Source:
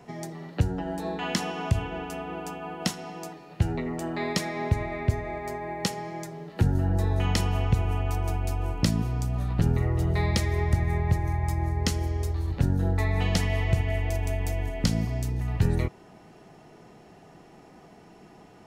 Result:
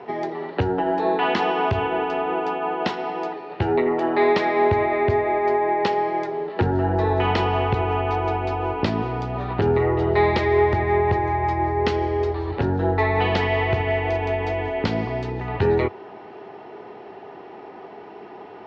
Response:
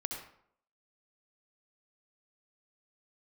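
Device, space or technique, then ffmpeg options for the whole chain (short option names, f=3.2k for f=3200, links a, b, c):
overdrive pedal into a guitar cabinet: -filter_complex "[0:a]asplit=2[a][b];[b]highpass=f=720:p=1,volume=15dB,asoftclip=type=tanh:threshold=-12dB[c];[a][c]amix=inputs=2:normalize=0,lowpass=f=1.8k:p=1,volume=-6dB,highpass=77,equalizer=f=93:t=q:w=4:g=3,equalizer=f=160:t=q:w=4:g=-7,equalizer=f=400:t=q:w=4:g=10,equalizer=f=880:t=q:w=4:g=5,lowpass=f=4.3k:w=0.5412,lowpass=f=4.3k:w=1.3066,volume=3.5dB"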